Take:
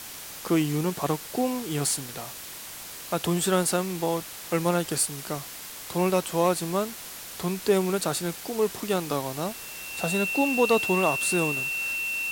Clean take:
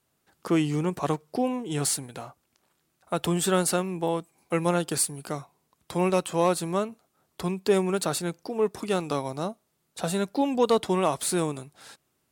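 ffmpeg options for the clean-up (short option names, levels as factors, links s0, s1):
-af "bandreject=f=2700:w=30,afwtdn=0.011"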